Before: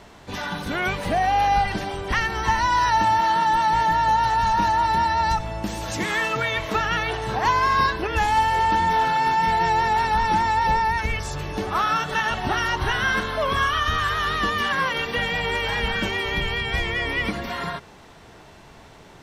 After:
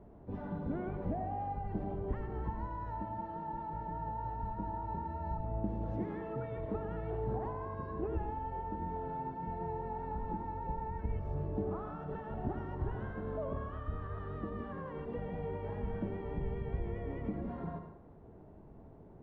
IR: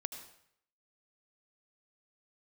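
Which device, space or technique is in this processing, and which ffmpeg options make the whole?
television next door: -filter_complex "[0:a]acompressor=threshold=0.0631:ratio=4,lowpass=470[s0];[1:a]atrim=start_sample=2205[s1];[s0][s1]afir=irnorm=-1:irlink=0,volume=0.668"

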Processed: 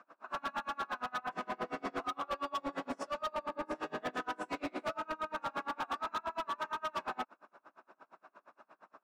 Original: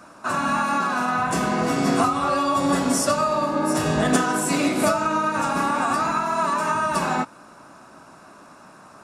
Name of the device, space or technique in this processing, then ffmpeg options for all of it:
helicopter radio: -af "highpass=390,lowpass=2500,aeval=exprs='val(0)*pow(10,-33*(0.5-0.5*cos(2*PI*8.6*n/s))/20)':c=same,asoftclip=type=hard:threshold=0.0531,volume=0.501"

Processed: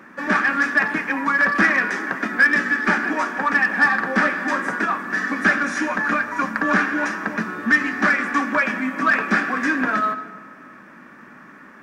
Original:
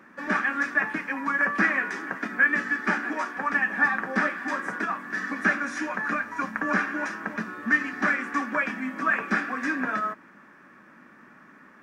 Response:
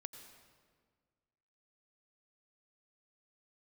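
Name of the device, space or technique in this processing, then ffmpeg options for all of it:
saturated reverb return: -filter_complex "[0:a]asplit=2[s0][s1];[1:a]atrim=start_sample=2205[s2];[s1][s2]afir=irnorm=-1:irlink=0,asoftclip=type=tanh:threshold=0.0562,volume=1.78[s3];[s0][s3]amix=inputs=2:normalize=0,volume=1.19"

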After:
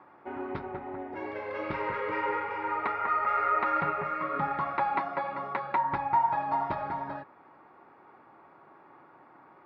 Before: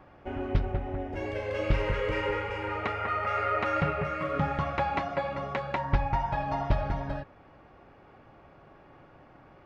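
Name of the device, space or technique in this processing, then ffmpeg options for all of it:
kitchen radio: -af "highpass=210,equalizer=f=350:t=q:w=4:g=4,equalizer=f=560:t=q:w=4:g=-3,equalizer=f=940:t=q:w=4:g=10,equalizer=f=1300:t=q:w=4:g=6,equalizer=f=2000:t=q:w=4:g=3,equalizer=f=3000:t=q:w=4:g=-8,lowpass=f=4300:w=0.5412,lowpass=f=4300:w=1.3066,volume=0.668"

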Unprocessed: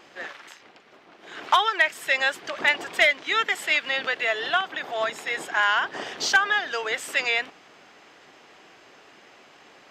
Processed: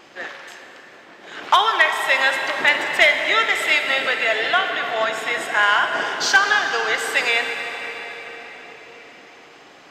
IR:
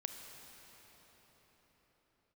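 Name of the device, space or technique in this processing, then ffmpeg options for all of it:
cathedral: -filter_complex "[1:a]atrim=start_sample=2205[s0];[0:a][s0]afir=irnorm=-1:irlink=0,volume=2.24"

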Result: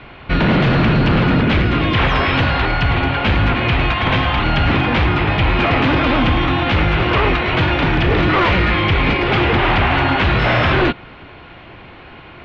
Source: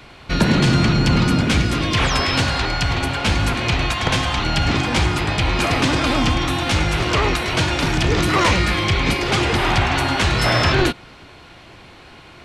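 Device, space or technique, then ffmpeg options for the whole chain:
synthesiser wavefolder: -af "aeval=exprs='0.211*(abs(mod(val(0)/0.211+3,4)-2)-1)':c=same,lowpass=f=3100:w=0.5412,lowpass=f=3100:w=1.3066,volume=1.78"

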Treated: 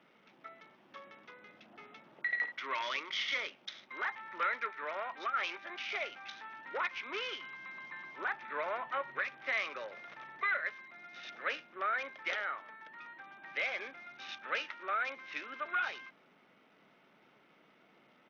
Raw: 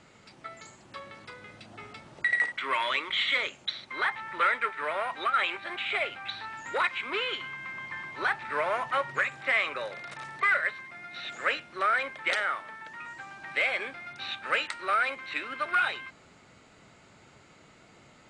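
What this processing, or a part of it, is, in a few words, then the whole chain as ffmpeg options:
Bluetooth headset: -af "highpass=f=180:w=0.5412,highpass=f=180:w=1.3066,aresample=8000,aresample=44100,volume=0.398" -ar 48000 -c:a sbc -b:a 64k

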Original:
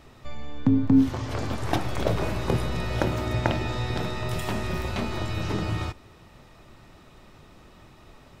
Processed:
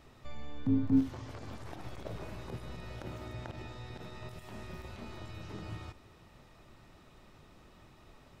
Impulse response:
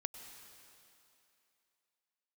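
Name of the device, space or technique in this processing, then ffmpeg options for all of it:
de-esser from a sidechain: -filter_complex "[0:a]asplit=2[s0][s1];[s1]highpass=4800,apad=whole_len=370456[s2];[s0][s2]sidechaincompress=threshold=0.00251:ratio=12:attack=1.1:release=56,volume=0.447"

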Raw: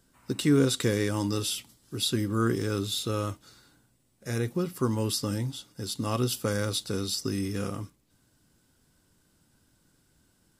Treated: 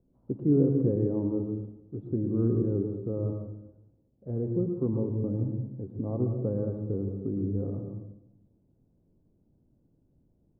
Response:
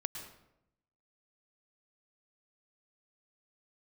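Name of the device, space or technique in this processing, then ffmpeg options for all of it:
next room: -filter_complex "[0:a]lowpass=f=620:w=0.5412,lowpass=f=620:w=1.3066[s0];[1:a]atrim=start_sample=2205[s1];[s0][s1]afir=irnorm=-1:irlink=0"

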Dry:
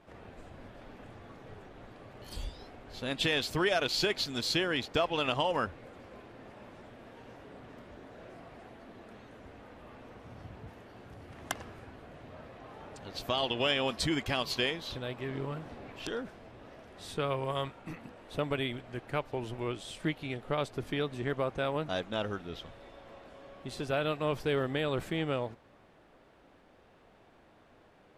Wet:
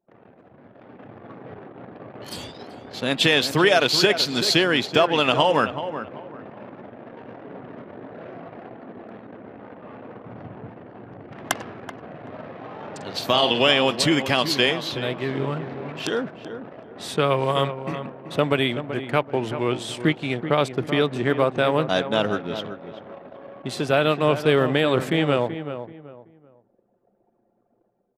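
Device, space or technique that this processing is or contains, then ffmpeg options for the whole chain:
voice memo with heavy noise removal: -filter_complex "[0:a]asettb=1/sr,asplit=3[s0][s1][s2];[s0]atrim=end=11.984[s3];[s1]atrim=start=11.98:end=13.6,asetpts=PTS-STARTPTS,afade=t=in:d=0.004:c=qsin,afade=t=out:st=1.616:d=0.004:c=qsin,asplit=2[s4][s5];[s5]adelay=47,volume=0.447[s6];[s4][s6]amix=inputs=2:normalize=0,atrim=end_sample=71442[s7];[s2]atrim=start=13.596[s8];[s3][s7]acrossfade=d=0.004:c1=hsin:c2=qsin[s9];[s9][s8]acrossfade=d=0.004:c1=qsin:c2=hsin,highpass=f=120:w=0.5412,highpass=f=120:w=1.3066,anlmdn=0.00398,dynaudnorm=f=680:g=3:m=3.98,asplit=2[s10][s11];[s11]adelay=381,lowpass=f=1700:p=1,volume=0.316,asplit=2[s12][s13];[s13]adelay=381,lowpass=f=1700:p=1,volume=0.29,asplit=2[s14][s15];[s15]adelay=381,lowpass=f=1700:p=1,volume=0.29[s16];[s10][s12][s14][s16]amix=inputs=4:normalize=0"

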